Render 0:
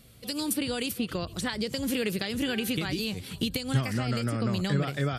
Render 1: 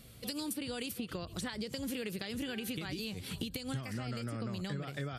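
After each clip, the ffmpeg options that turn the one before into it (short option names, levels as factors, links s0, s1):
-af "acompressor=threshold=0.0158:ratio=6"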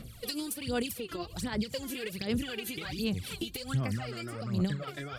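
-af "aphaser=in_gain=1:out_gain=1:delay=3:decay=0.75:speed=1.3:type=sinusoidal"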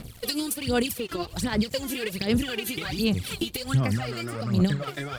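-af "aeval=exprs='sgn(val(0))*max(abs(val(0))-0.00211,0)':c=same,volume=2.51"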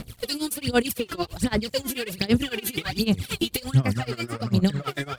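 -af "tremolo=f=9:d=0.9,volume=1.88"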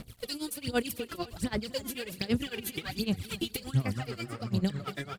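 -af "aecho=1:1:254|508|762:0.126|0.0491|0.0191,volume=0.398"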